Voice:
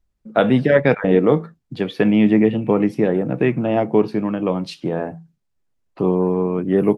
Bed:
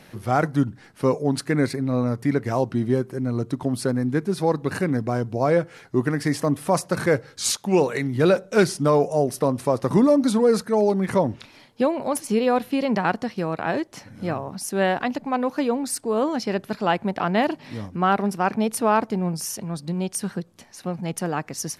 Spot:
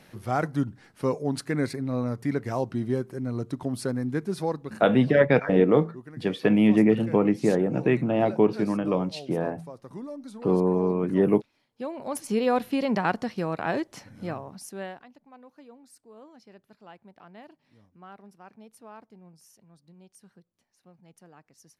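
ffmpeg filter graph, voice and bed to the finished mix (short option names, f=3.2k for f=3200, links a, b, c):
-filter_complex "[0:a]adelay=4450,volume=-4.5dB[a];[1:a]volume=13dB,afade=t=out:st=4.4:d=0.43:silence=0.158489,afade=t=in:st=11.68:d=0.79:silence=0.11885,afade=t=out:st=13.87:d=1.19:silence=0.0630957[b];[a][b]amix=inputs=2:normalize=0"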